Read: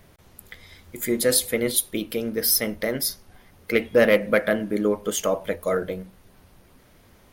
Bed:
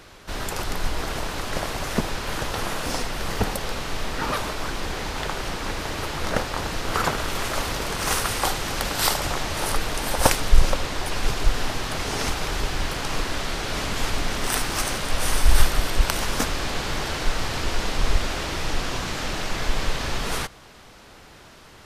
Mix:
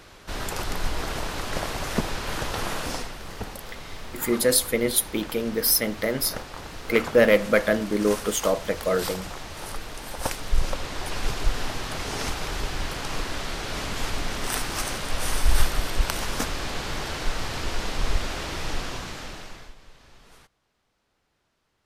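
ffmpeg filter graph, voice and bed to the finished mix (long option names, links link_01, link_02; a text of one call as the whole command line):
ffmpeg -i stem1.wav -i stem2.wav -filter_complex "[0:a]adelay=3200,volume=0dB[link_01];[1:a]volume=5.5dB,afade=type=out:start_time=2.78:duration=0.42:silence=0.354813,afade=type=in:start_time=10.26:duration=0.85:silence=0.446684,afade=type=out:start_time=18.73:duration=1.02:silence=0.0749894[link_02];[link_01][link_02]amix=inputs=2:normalize=0" out.wav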